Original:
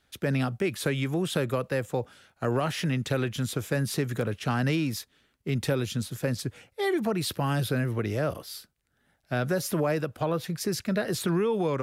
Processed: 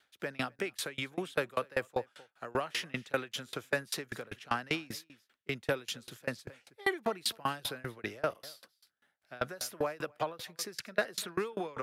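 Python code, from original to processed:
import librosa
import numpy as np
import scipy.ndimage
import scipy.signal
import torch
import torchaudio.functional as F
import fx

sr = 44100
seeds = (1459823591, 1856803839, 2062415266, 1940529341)

p1 = fx.highpass(x, sr, hz=1100.0, slope=6)
p2 = fx.high_shelf(p1, sr, hz=4200.0, db=-8.5)
p3 = p2 + fx.echo_single(p2, sr, ms=256, db=-20.0, dry=0)
p4 = fx.tremolo_decay(p3, sr, direction='decaying', hz=5.1, depth_db=29)
y = F.gain(torch.from_numpy(p4), 8.0).numpy()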